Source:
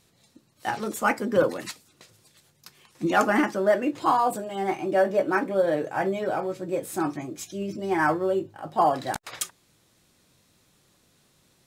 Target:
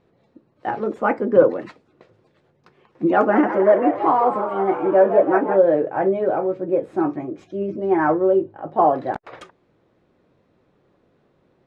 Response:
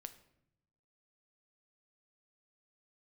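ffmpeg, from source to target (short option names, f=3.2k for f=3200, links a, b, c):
-filter_complex "[0:a]lowpass=1.8k,equalizer=f=440:t=o:w=1.7:g=9,asettb=1/sr,asplit=3[a][b][c];[a]atrim=end=3.164[d];[b]atrim=start=3.16:end=5.59,asetpts=PTS-STARTPTS,afade=t=in:d=0.004:c=qsin,afade=t=out:st=2.426:d=0.004:c=qsin,asplit=8[e][f][g][h][i][j][k][l];[f]adelay=166,afreqshift=100,volume=-9.5dB[m];[g]adelay=332,afreqshift=200,volume=-13.9dB[n];[h]adelay=498,afreqshift=300,volume=-18.4dB[o];[i]adelay=664,afreqshift=400,volume=-22.8dB[p];[j]adelay=830,afreqshift=500,volume=-27.2dB[q];[k]adelay=996,afreqshift=600,volume=-31.7dB[r];[l]adelay=1162,afreqshift=700,volume=-36.1dB[s];[e][m][n][o][p][q][r][s]amix=inputs=8:normalize=0,atrim=end_sample=107163[t];[c]atrim=start=5.586[u];[d][t]acrossfade=d=0.004:c1=hsin:c2=qsin[v];[v][u]acrossfade=d=0.004:c1=qsin:c2=hsin"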